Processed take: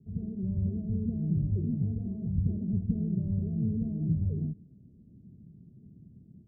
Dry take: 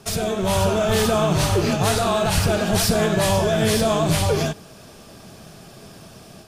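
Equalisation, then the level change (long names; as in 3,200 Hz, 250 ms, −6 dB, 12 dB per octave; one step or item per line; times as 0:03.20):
high-pass filter 51 Hz
inverse Chebyshev low-pass filter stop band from 1,500 Hz, stop band 80 dB
−6.0 dB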